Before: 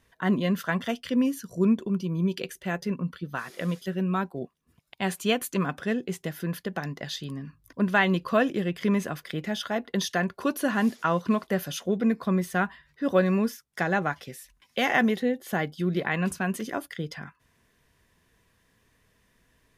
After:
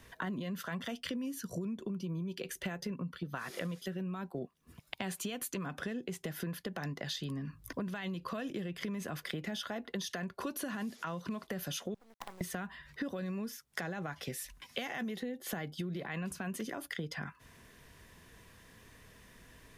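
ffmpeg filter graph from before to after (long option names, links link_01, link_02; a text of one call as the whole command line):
ffmpeg -i in.wav -filter_complex "[0:a]asettb=1/sr,asplit=3[link_01][link_02][link_03];[link_01]atrim=end=11.944[link_04];[link_02]atrim=start=11.94:end=12.41,asetpts=PTS-STARTPTS,afade=type=in:duration=0.004:curve=qsin,afade=type=out:start_time=0.466:duration=0.004:curve=qsin,acompressor=threshold=-28dB:ratio=16:attack=3.2:release=140:knee=1:detection=peak,bandpass=frequency=830:width_type=q:width=10,acrusher=bits=8:dc=4:mix=0:aa=0.000001[link_05];[link_03]atrim=start=12.406[link_06];[link_04][link_05]acrossfade=duration=0.004:curve1=hsin:curve2=qsin[link_07];[link_07][link_06]acrossfade=duration=0.004:curve1=qsin:curve2=hsin,acrossover=split=180|3000[link_08][link_09][link_10];[link_09]acompressor=threshold=-27dB:ratio=6[link_11];[link_08][link_11][link_10]amix=inputs=3:normalize=0,alimiter=limit=-23.5dB:level=0:latency=1:release=38,acompressor=threshold=-44dB:ratio=12,volume=8.5dB" out.wav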